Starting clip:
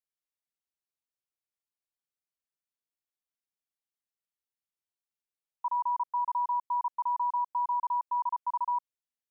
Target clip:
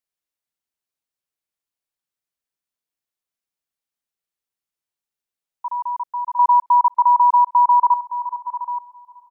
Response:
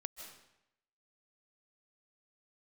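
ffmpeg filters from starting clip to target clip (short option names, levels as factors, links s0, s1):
-filter_complex "[0:a]asettb=1/sr,asplit=3[s0][s1][s2];[s0]atrim=end=6.394[s3];[s1]atrim=start=6.39:end=7.94,asetpts=PTS-STARTPTS,afade=t=in:d=0.004:c=qsin,afade=t=out:st=1.546:d=0.004:c=qsin,equalizer=f=950:w=0.46:g=11.5[s4];[s2]atrim=start=7.936[s5];[s3][s4]acrossfade=d=0.004:c1=hsin:c2=qsin[s6];[s6][s5]acrossfade=d=0.004:c1=qsin:c2=hsin,asplit=2[s7][s8];[s8]adelay=626,lowpass=f=840:p=1,volume=0.112,asplit=2[s9][s10];[s10]adelay=626,lowpass=f=840:p=1,volume=0.55,asplit=2[s11][s12];[s12]adelay=626,lowpass=f=840:p=1,volume=0.55,asplit=2[s13][s14];[s14]adelay=626,lowpass=f=840:p=1,volume=0.55,asplit=2[s15][s16];[s16]adelay=626,lowpass=f=840:p=1,volume=0.55[s17];[s9][s11][s13][s15][s17]amix=inputs=5:normalize=0[s18];[s7][s18]amix=inputs=2:normalize=0,volume=1.68"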